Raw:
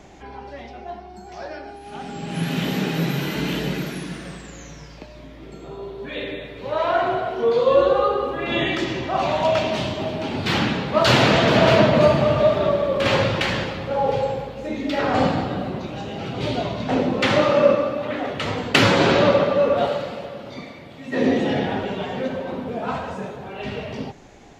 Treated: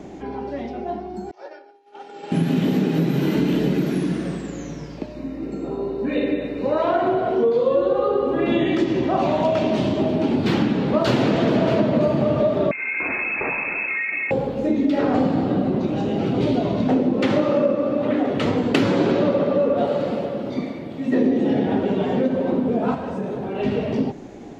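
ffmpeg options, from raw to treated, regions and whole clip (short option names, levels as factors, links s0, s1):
-filter_complex "[0:a]asettb=1/sr,asplit=3[s0][s1][s2];[s0]atrim=end=1.314[s3];[s1]atrim=start=1.31:end=2.32,asetpts=PTS-STARTPTS,afade=t=in:d=0.004:c=qsin,afade=t=out:st=1.006:d=0.004:c=qsin,agate=range=0.0224:threshold=0.0447:ratio=3:release=100:detection=peak,highpass=600,lowpass=6800,aecho=1:1:2.2:0.56,atrim=end_sample=44541[s4];[s2]atrim=start=2.316[s5];[s3][s4]acrossfade=d=0.004:c1=hsin:c2=qsin[s6];[s6][s5]acrossfade=d=0.004:c1=qsin:c2=hsin,asettb=1/sr,asplit=3[s7][s8][s9];[s7]atrim=end=5.144[s10];[s8]atrim=start=5.14:end=6.82,asetpts=PTS-STARTPTS,afade=t=in:d=0.004:c=qsin,afade=t=out:st=1.676:d=0.004:c=qsin,asuperstop=centerf=3300:order=20:qfactor=7,aecho=1:1:3.8:0.33,atrim=end_sample=74088[s11];[s9]atrim=start=6.816[s12];[s10][s11]acrossfade=d=0.004:c1=hsin:c2=qsin[s13];[s13][s12]acrossfade=d=0.004:c1=qsin:c2=hsin,asettb=1/sr,asplit=3[s14][s15][s16];[s14]atrim=end=12.714[s17];[s15]atrim=start=12.71:end=14.31,asetpts=PTS-STARTPTS,afade=t=in:d=0.004:c=qsin,afade=t=out:st=1.596:d=0.004:c=qsin,lowshelf=f=190:g=11,acompressor=threshold=0.1:ratio=16:attack=3.2:release=140:knee=1:detection=peak,lowpass=f=2300:t=q:w=0.5098,lowpass=f=2300:t=q:w=0.6013,lowpass=f=2300:t=q:w=0.9,lowpass=f=2300:t=q:w=2.563,afreqshift=-2700[s18];[s16]atrim=start=14.306[s19];[s17][s18]acrossfade=d=0.004:c1=hsin:c2=qsin[s20];[s20][s19]acrossfade=d=0.004:c1=qsin:c2=hsin,asettb=1/sr,asplit=3[s21][s22][s23];[s21]atrim=end=22.944[s24];[s22]atrim=start=22.94:end=23.55,asetpts=PTS-STARTPTS,afade=t=in:d=0.004:c=qsin,afade=t=out:st=0.606:d=0.004:c=qsin,bandreject=f=6900:w=24,acompressor=threshold=0.0282:ratio=5:attack=3.2:release=140:knee=1:detection=peak[s25];[s23]atrim=start=23.546[s26];[s24][s25]acrossfade=d=0.004:c1=hsin:c2=qsin[s27];[s27][s26]acrossfade=d=0.004:c1=qsin:c2=hsin,equalizer=f=280:t=o:w=2.3:g=14.5,acompressor=threshold=0.178:ratio=5,volume=0.841"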